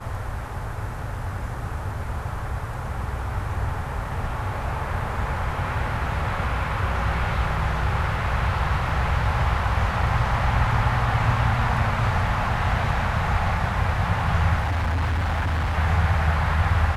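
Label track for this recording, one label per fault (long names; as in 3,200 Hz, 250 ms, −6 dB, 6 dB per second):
8.890000	8.890000	drop-out 2 ms
14.600000	15.770000	clipping −20.5 dBFS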